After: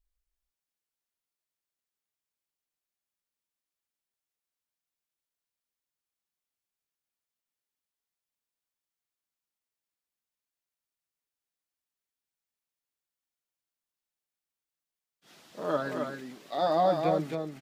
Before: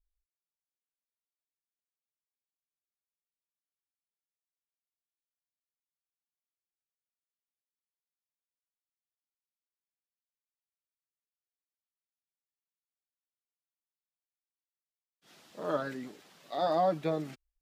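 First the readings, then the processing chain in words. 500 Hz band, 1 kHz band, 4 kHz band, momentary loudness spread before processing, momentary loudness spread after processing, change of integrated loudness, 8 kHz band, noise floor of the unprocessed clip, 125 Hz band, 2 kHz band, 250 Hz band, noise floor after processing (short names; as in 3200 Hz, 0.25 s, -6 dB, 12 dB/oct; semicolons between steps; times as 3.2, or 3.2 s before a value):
+3.5 dB, +3.5 dB, +3.5 dB, 16 LU, 13 LU, +3.0 dB, +3.5 dB, under -85 dBFS, +3.5 dB, +4.0 dB, +3.5 dB, under -85 dBFS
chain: echo 0.268 s -5 dB; gain +2.5 dB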